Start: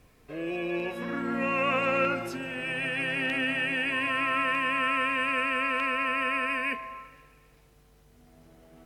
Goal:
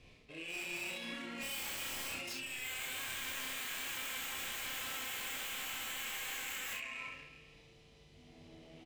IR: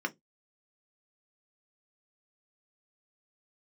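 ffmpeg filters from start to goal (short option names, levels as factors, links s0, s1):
-filter_complex "[0:a]aexciter=amount=13.3:drive=5.7:freq=2300,adynamicsmooth=sensitivity=2.5:basefreq=1400,aeval=exprs='0.106*(abs(mod(val(0)/0.106+3,4)-2)-1)':c=same,areverse,acompressor=threshold=0.01:ratio=8,areverse,flanger=delay=8.5:depth=6.1:regen=-59:speed=1.3:shape=sinusoidal,asplit=2[s0][s1];[s1]aecho=0:1:31|65:0.668|0.562[s2];[s0][s2]amix=inputs=2:normalize=0,volume=1.12"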